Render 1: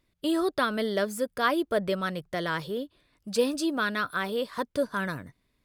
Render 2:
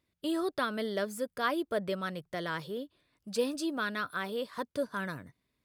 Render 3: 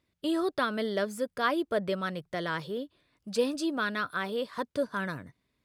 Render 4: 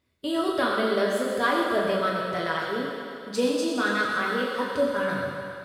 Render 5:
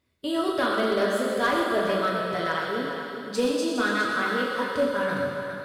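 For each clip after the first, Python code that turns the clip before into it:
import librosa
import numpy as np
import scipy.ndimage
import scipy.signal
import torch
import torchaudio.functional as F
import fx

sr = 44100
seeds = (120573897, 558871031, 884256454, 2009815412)

y1 = scipy.signal.sosfilt(scipy.signal.butter(2, 62.0, 'highpass', fs=sr, output='sos'), x)
y1 = F.gain(torch.from_numpy(y1), -5.5).numpy()
y2 = fx.high_shelf(y1, sr, hz=11000.0, db=-10.0)
y2 = F.gain(torch.from_numpy(y2), 3.0).numpy()
y3 = fx.rev_fdn(y2, sr, rt60_s=2.7, lf_ratio=0.7, hf_ratio=0.95, size_ms=72.0, drr_db=-5.0)
y4 = np.clip(y3, -10.0 ** (-17.0 / 20.0), 10.0 ** (-17.0 / 20.0))
y4 = y4 + 10.0 ** (-10.0 / 20.0) * np.pad(y4, (int(410 * sr / 1000.0), 0))[:len(y4)]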